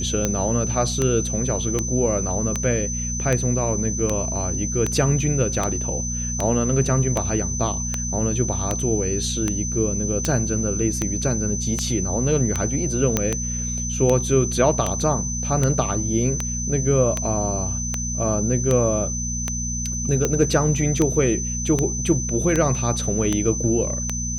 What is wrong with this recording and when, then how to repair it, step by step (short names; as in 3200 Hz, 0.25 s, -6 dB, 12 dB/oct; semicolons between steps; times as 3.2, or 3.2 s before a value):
hum 60 Hz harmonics 4 -28 dBFS
tick 78 rpm -7 dBFS
tone 6100 Hz -27 dBFS
13.17 pop -4 dBFS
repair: de-click; de-hum 60 Hz, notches 4; notch 6100 Hz, Q 30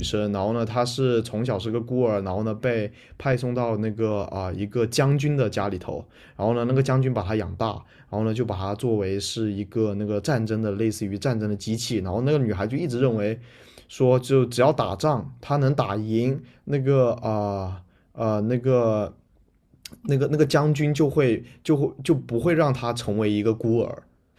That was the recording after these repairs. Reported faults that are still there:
13.17 pop